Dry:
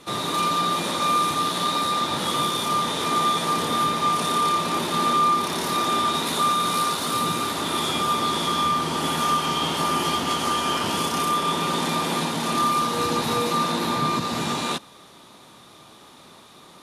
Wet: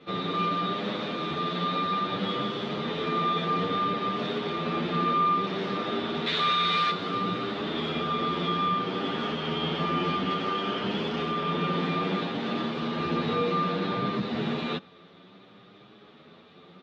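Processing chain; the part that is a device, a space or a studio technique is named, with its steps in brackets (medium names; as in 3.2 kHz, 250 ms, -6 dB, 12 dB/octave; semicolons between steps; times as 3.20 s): 6.26–6.91 s: graphic EQ 250/2000/4000/8000 Hz -7/+7/+8/+8 dB; barber-pole flanger into a guitar amplifier (endless flanger 8.8 ms +0.6 Hz; saturation -13 dBFS, distortion -23 dB; cabinet simulation 76–3500 Hz, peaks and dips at 190 Hz +8 dB, 430 Hz +6 dB, 960 Hz -9 dB); trim -1 dB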